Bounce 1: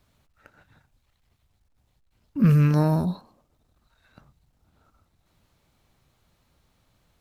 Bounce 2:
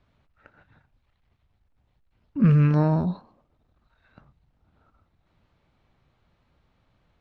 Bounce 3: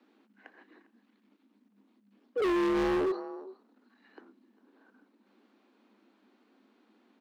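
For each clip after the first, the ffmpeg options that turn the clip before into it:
-af "lowpass=3000"
-af "aecho=1:1:403:0.0944,afreqshift=200,asoftclip=type=hard:threshold=0.0501"

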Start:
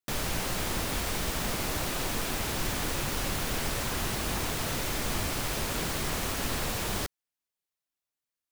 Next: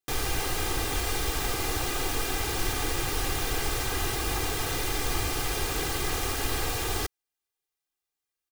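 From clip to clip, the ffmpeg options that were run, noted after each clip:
-af "aecho=1:1:2.5:0.74"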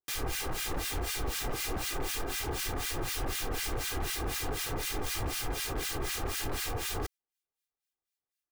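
-filter_complex "[0:a]acrossover=split=1400[s0][s1];[s0]aeval=exprs='val(0)*(1-1/2+1/2*cos(2*PI*4*n/s))':c=same[s2];[s1]aeval=exprs='val(0)*(1-1/2-1/2*cos(2*PI*4*n/s))':c=same[s3];[s2][s3]amix=inputs=2:normalize=0,aeval=exprs='0.0473*(abs(mod(val(0)/0.0473+3,4)-2)-1)':c=same"

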